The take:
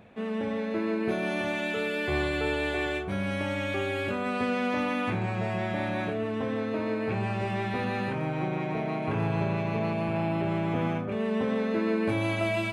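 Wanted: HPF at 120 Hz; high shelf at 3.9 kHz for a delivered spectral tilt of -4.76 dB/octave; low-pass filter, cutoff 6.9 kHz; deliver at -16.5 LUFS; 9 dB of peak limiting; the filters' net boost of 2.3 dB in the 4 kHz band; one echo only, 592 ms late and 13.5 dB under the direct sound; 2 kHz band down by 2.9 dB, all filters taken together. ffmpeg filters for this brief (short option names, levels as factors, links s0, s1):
-af "highpass=120,lowpass=6900,equalizer=f=2000:t=o:g=-4.5,highshelf=f=3900:g=-5.5,equalizer=f=4000:t=o:g=8,alimiter=level_in=1.26:limit=0.0631:level=0:latency=1,volume=0.794,aecho=1:1:592:0.211,volume=7.5"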